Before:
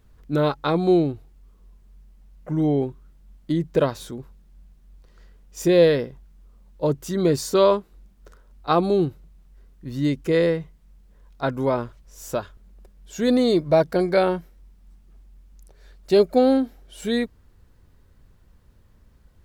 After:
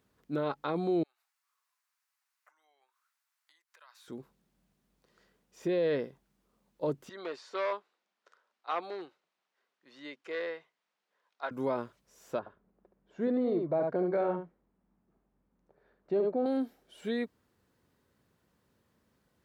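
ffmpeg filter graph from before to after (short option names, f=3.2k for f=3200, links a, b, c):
-filter_complex "[0:a]asettb=1/sr,asplit=3[a][b][c];[a]atrim=end=1.034[d];[b]atrim=start=1.03:end=4.08,asetpts=PTS-STARTPTS,afade=t=in:d=0.004:c=qsin,afade=t=out:st=3.046:d=0.004:c=qsin,equalizer=f=3.2k:w=2.8:g=-4.5,acompressor=threshold=-40dB:ratio=3:attack=3.2:release=140:knee=1:detection=peak,highpass=f=1.1k:w=0.5412,highpass=f=1.1k:w=1.3066[e];[c]atrim=start=4.076[f];[d][e]acrossfade=d=0.004:c1=hsin:c2=qsin[g];[g][f]acrossfade=d=0.004:c1=qsin:c2=hsin,asettb=1/sr,asplit=3[h][i][j];[h]atrim=end=7.094[k];[i]atrim=start=7.09:end=11.51,asetpts=PTS-STARTPTS,afade=t=in:d=0.004:c=qsin,afade=t=out:st=4.416:d=0.004:c=qsin,asoftclip=type=hard:threshold=-13.5dB,highpass=800,lowpass=4.7k[l];[j]atrim=start=11.506[m];[k][l]acrossfade=d=0.004:c1=hsin:c2=qsin[n];[n][m]acrossfade=d=0.004:c1=qsin:c2=hsin,asettb=1/sr,asplit=3[o][p][q];[o]atrim=end=12.394[r];[p]atrim=start=12.39:end=16.46,asetpts=PTS-STARTPTS,afade=t=in:d=0.004:c=qsin,afade=t=out:st=4.066:d=0.004:c=qsin,lowpass=1.3k,aecho=1:1:72:0.422,atrim=end_sample=179487[s];[q]atrim=start=16.456[t];[r][s]acrossfade=d=0.004:c1=hsin:c2=qsin[u];[u][t]acrossfade=d=0.004:c1=qsin:c2=hsin,alimiter=limit=-14.5dB:level=0:latency=1:release=32,acrossover=split=3600[v][w];[w]acompressor=threshold=-54dB:ratio=4:attack=1:release=60[x];[v][x]amix=inputs=2:normalize=0,highpass=190,volume=-7.5dB"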